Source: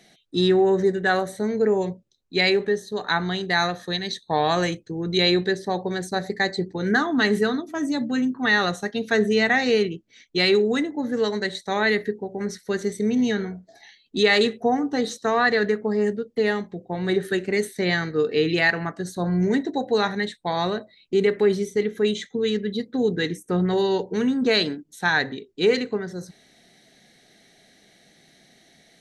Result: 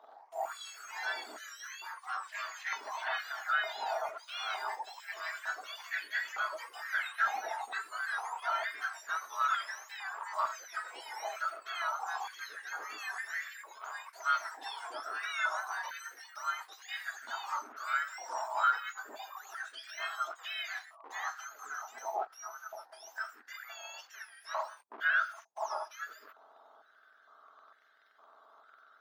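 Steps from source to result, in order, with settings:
frequency axis turned over on the octave scale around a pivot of 1,600 Hz
high-shelf EQ 9,200 Hz +11.5 dB
leveller curve on the samples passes 2
downward compressor 4 to 1, threshold −30 dBFS, peak gain reduction 15.5 dB
brickwall limiter −28 dBFS, peak gain reduction 10.5 dB
high-frequency loss of the air 280 metres
delay with pitch and tempo change per echo 88 ms, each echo +3 semitones, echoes 3, each echo −6 dB
high-pass on a step sequencer 2.2 Hz 820–1,800 Hz

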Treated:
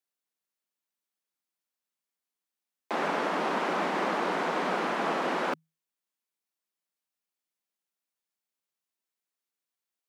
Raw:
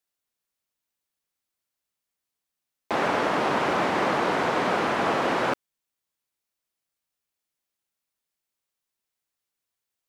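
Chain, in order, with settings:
Chebyshev high-pass filter 160 Hz, order 10
level −4.5 dB

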